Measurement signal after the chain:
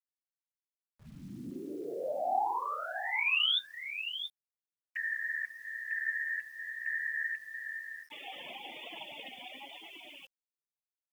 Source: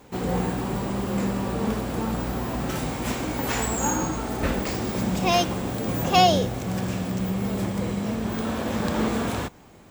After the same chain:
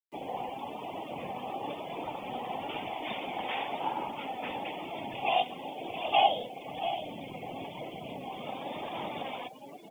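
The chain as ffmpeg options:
-filter_complex "[0:a]acrossover=split=190 2300:gain=0.178 1 0.158[a][b][c];[a][b][c]amix=inputs=3:normalize=0,acrossover=split=180|2100[d][e][f];[d]alimiter=level_in=14.5dB:limit=-24dB:level=0:latency=1:release=33,volume=-14.5dB[g];[g][e][f]amix=inputs=3:normalize=0,aexciter=amount=11.1:drive=7.6:freq=2.4k,dynaudnorm=f=180:g=21:m=4.5dB,afftfilt=real='re*between(b*sr/4096,130,3600)':imag='im*between(b*sr/4096,130,3600)':win_size=4096:overlap=0.75,aecho=1:1:679:0.282,afftfilt=real='hypot(re,im)*cos(2*PI*random(0))':imag='hypot(re,im)*sin(2*PI*random(1))':win_size=512:overlap=0.75,flanger=delay=2.9:depth=1.2:regen=76:speed=1:shape=triangular,afftdn=nr=36:nf=-43,equalizer=f=780:t=o:w=0.78:g=15,asplit=2[h][i];[i]acompressor=threshold=-37dB:ratio=8,volume=1dB[j];[h][j]amix=inputs=2:normalize=0,acrusher=bits=8:mix=0:aa=0.000001,volume=-8.5dB"

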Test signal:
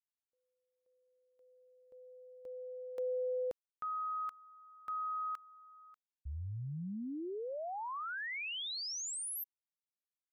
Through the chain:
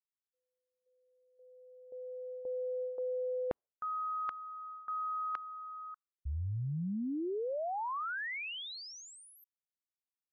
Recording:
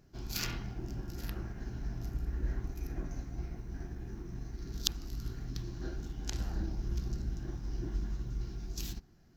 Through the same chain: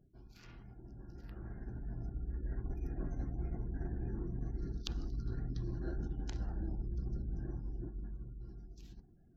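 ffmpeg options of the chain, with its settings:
-af "areverse,acompressor=threshold=-48dB:ratio=16:attack=9.3:release=305:knee=6:detection=peak,areverse,afftdn=nr=33:nf=-69,aemphasis=mode=reproduction:type=75fm,dynaudnorm=f=270:g=13:m=16dB,volume=-2.5dB"

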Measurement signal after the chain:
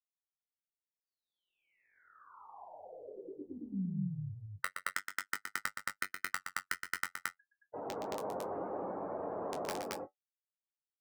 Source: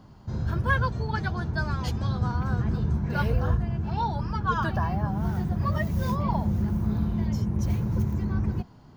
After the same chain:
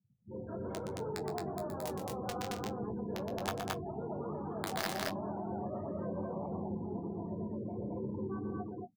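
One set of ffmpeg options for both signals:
-filter_complex "[0:a]lowpass=4.3k,afftfilt=real='re*gte(hypot(re,im),0.0251)':imag='im*gte(hypot(re,im),0.0251)':win_size=1024:overlap=0.75,highpass=630,afftfilt=real='re*lt(hypot(re,im),0.0794)':imag='im*lt(hypot(re,im),0.0794)':win_size=1024:overlap=0.75,acrossover=split=830[a][b];[a]alimiter=level_in=20.5dB:limit=-24dB:level=0:latency=1:release=11,volume=-20.5dB[c];[b]acrusher=bits=5:mix=0:aa=0.000001[d];[c][d]amix=inputs=2:normalize=0,flanger=delay=9.7:depth=1.6:regen=-46:speed=0.36:shape=sinusoidal,asplit=2[e][f];[f]adelay=21,volume=-8.5dB[g];[e][g]amix=inputs=2:normalize=0,aecho=1:1:119.5|221.6:0.447|0.891,volume=13dB"

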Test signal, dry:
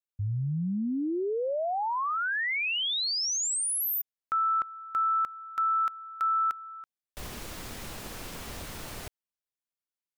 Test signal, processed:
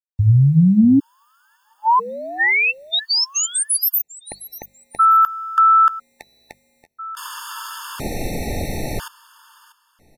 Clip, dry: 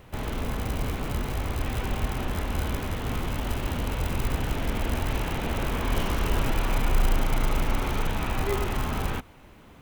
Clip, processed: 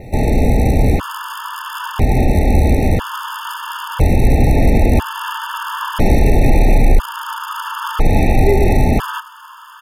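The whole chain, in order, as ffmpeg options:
-filter_complex "[0:a]adynamicequalizer=threshold=0.002:dfrequency=7500:dqfactor=2.5:tfrequency=7500:tqfactor=2.5:attack=5:release=100:ratio=0.438:range=2.5:mode=cutabove:tftype=bell,acrossover=split=4600[a][b];[a]bandreject=f=50:t=h:w=6,bandreject=f=100:t=h:w=6,bandreject=f=150:t=h:w=6,bandreject=f=200:t=h:w=6[c];[b]acontrast=51[d];[c][d]amix=inputs=2:normalize=0,aresample=32000,aresample=44100,acrusher=bits=10:mix=0:aa=0.000001,highshelf=f=2.2k:g=-11,aecho=1:1:642|1284:0.133|0.0333,asoftclip=type=tanh:threshold=-13.5dB,alimiter=level_in=19.5dB:limit=-1dB:release=50:level=0:latency=1,afftfilt=real='re*gt(sin(2*PI*0.5*pts/sr)*(1-2*mod(floor(b*sr/1024/900),2)),0)':imag='im*gt(sin(2*PI*0.5*pts/sr)*(1-2*mod(floor(b*sr/1024/900),2)),0)':win_size=1024:overlap=0.75,volume=-1dB"

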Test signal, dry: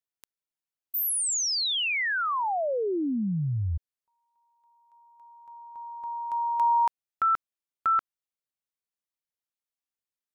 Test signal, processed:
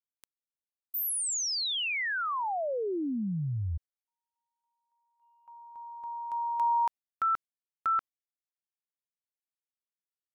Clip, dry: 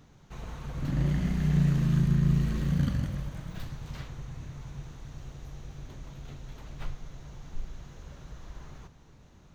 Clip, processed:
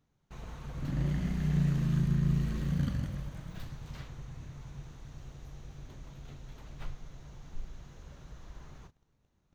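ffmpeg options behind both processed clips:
-af "agate=range=-15dB:threshold=-51dB:ratio=16:release=65:detection=rms,volume=-4dB"

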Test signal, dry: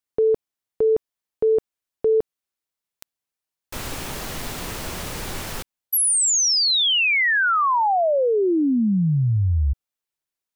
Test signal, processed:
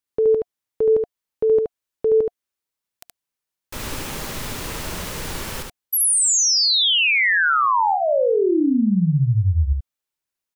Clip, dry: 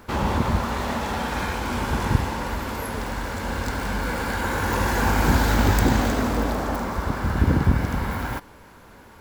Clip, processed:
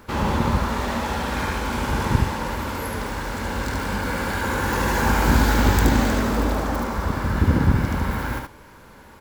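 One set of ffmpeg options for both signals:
-filter_complex "[0:a]bandreject=f=710:w=12,asplit=2[a][b];[b]aecho=0:1:73:0.631[c];[a][c]amix=inputs=2:normalize=0"

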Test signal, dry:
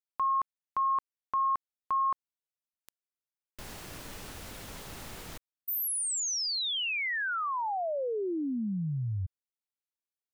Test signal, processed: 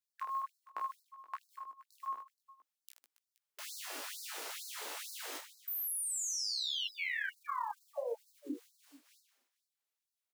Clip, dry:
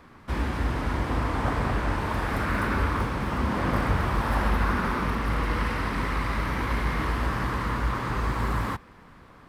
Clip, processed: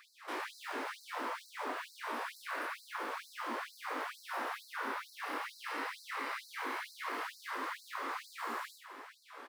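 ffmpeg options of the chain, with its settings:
-filter_complex "[0:a]lowshelf=f=260:g=-8,bandreject=f=99.45:t=h:w=4,bandreject=f=198.9:t=h:w=4,bandreject=f=298.35:t=h:w=4,acrossover=split=100|200[a][b][c];[a]acompressor=threshold=-42dB:ratio=4[d];[b]acompressor=threshold=-43dB:ratio=4[e];[c]acompressor=threshold=-42dB:ratio=4[f];[d][e][f]amix=inputs=3:normalize=0,flanger=delay=17:depth=2.4:speed=1.4,acrusher=bits=8:mode=log:mix=0:aa=0.000001,asplit=2[g][h];[h]aecho=0:1:30|78|154.8|277.7|474.3:0.631|0.398|0.251|0.158|0.1[i];[g][i]amix=inputs=2:normalize=0,afftfilt=real='re*gte(b*sr/1024,230*pow(4000/230,0.5+0.5*sin(2*PI*2.2*pts/sr)))':imag='im*gte(b*sr/1024,230*pow(4000/230,0.5+0.5*sin(2*PI*2.2*pts/sr)))':win_size=1024:overlap=0.75,volume=5dB"

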